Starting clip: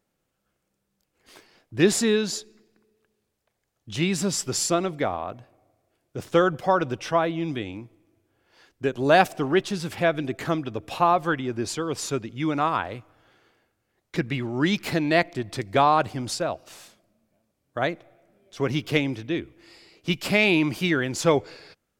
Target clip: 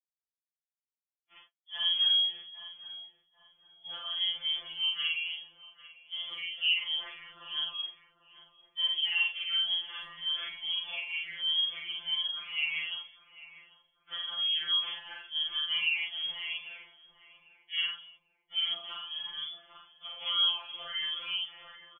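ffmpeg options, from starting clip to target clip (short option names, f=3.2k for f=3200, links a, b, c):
-filter_complex "[0:a]afftfilt=real='re':imag='-im':win_size=4096:overlap=0.75,lowshelf=f=220:g=5,acompressor=threshold=-31dB:ratio=1.5,asplit=2[a][b];[b]adelay=33,volume=-5dB[c];[a][c]amix=inputs=2:normalize=0,agate=range=-58dB:threshold=-54dB:ratio=16:detection=peak,lowpass=f=3k:t=q:w=0.5098,lowpass=f=3k:t=q:w=0.6013,lowpass=f=3k:t=q:w=0.9,lowpass=f=3k:t=q:w=2.563,afreqshift=-3500,asplit=2[d][e];[e]adelay=796,lowpass=f=1k:p=1,volume=-15dB,asplit=2[f][g];[g]adelay=796,lowpass=f=1k:p=1,volume=0.52,asplit=2[h][i];[i]adelay=796,lowpass=f=1k:p=1,volume=0.52,asplit=2[j][k];[k]adelay=796,lowpass=f=1k:p=1,volume=0.52,asplit=2[l][m];[m]adelay=796,lowpass=f=1k:p=1,volume=0.52[n];[f][h][j][l][n]amix=inputs=5:normalize=0[o];[d][o]amix=inputs=2:normalize=0,acrossover=split=520|2400[p][q][r];[p]acompressor=threshold=-60dB:ratio=4[s];[q]acompressor=threshold=-44dB:ratio=4[t];[r]acompressor=threshold=-31dB:ratio=4[u];[s][t][u]amix=inputs=3:normalize=0,highshelf=f=2.7k:g=8.5,afftfilt=real='re*2.83*eq(mod(b,8),0)':imag='im*2.83*eq(mod(b,8),0)':win_size=2048:overlap=0.75"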